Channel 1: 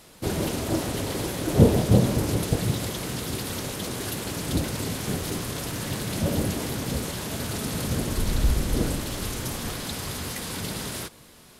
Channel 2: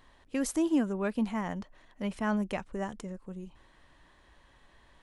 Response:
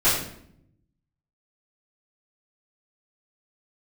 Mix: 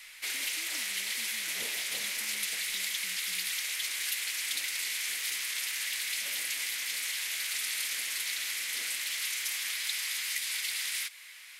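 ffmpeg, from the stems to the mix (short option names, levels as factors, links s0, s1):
-filter_complex "[0:a]highpass=f=2100:t=q:w=4.3,volume=1.06[s0];[1:a]acompressor=threshold=0.0126:ratio=6,volume=0.126[s1];[s0][s1]amix=inputs=2:normalize=0,acrossover=split=430|3000[s2][s3][s4];[s3]acompressor=threshold=0.01:ratio=6[s5];[s2][s5][s4]amix=inputs=3:normalize=0"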